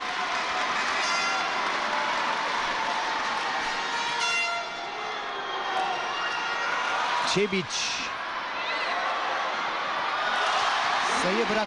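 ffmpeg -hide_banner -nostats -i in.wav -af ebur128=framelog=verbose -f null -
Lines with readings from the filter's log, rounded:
Integrated loudness:
  I:         -26.5 LUFS
  Threshold: -36.5 LUFS
Loudness range:
  LRA:         1.6 LU
  Threshold: -46.8 LUFS
  LRA low:   -27.6 LUFS
  LRA high:  -26.0 LUFS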